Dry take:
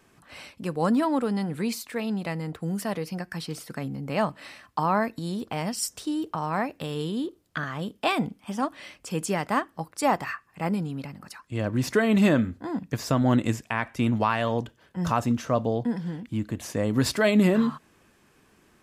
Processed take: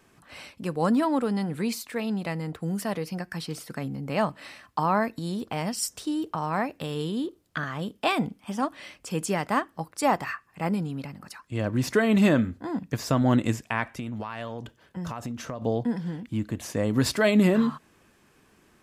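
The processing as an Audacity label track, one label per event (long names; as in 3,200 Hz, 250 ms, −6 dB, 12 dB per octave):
13.870000	15.620000	downward compressor 16 to 1, threshold −29 dBFS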